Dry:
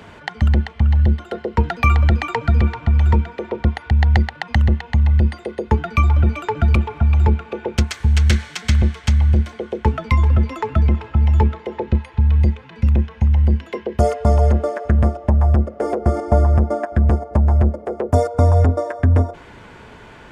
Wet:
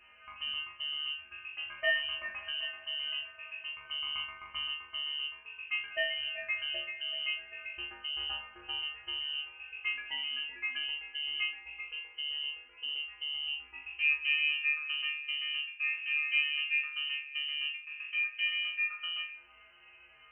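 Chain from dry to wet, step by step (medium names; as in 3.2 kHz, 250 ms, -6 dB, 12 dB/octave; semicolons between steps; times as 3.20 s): chord resonator D3 sus4, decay 0.38 s; frequency inversion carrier 3 kHz; harmonic-percussive split percussive -17 dB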